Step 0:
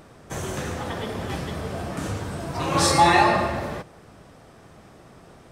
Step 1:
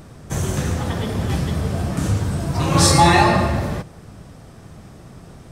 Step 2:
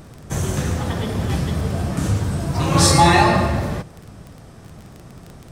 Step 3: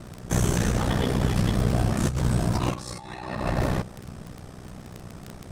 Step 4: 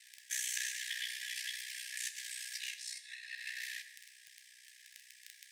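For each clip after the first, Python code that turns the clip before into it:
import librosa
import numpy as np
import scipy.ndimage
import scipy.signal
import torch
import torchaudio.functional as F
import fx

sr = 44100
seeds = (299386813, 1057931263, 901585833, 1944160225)

y1 = fx.bass_treble(x, sr, bass_db=10, treble_db=5)
y1 = F.gain(torch.from_numpy(y1), 2.0).numpy()
y2 = fx.dmg_crackle(y1, sr, seeds[0], per_s=19.0, level_db=-28.0)
y3 = fx.over_compress(y2, sr, threshold_db=-21.0, ratio=-0.5)
y3 = y3 * np.sin(2.0 * np.pi * 31.0 * np.arange(len(y3)) / sr)
y4 = fx.brickwall_highpass(y3, sr, low_hz=1600.0)
y4 = fx.rev_fdn(y4, sr, rt60_s=1.4, lf_ratio=1.0, hf_ratio=0.75, size_ms=55.0, drr_db=8.5)
y4 = F.gain(torch.from_numpy(y4), -4.0).numpy()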